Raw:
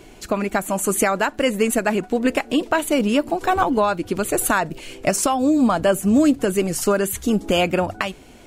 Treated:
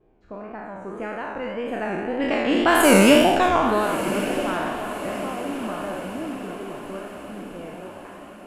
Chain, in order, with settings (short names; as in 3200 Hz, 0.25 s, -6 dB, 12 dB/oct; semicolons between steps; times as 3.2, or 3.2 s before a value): spectral trails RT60 1.64 s; Doppler pass-by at 3.05, 9 m/s, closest 2.3 m; wow and flutter 100 cents; low-pass opened by the level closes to 1100 Hz, open at -14.5 dBFS; diffused feedback echo 1.197 s, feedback 53%, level -11.5 dB; gain +2.5 dB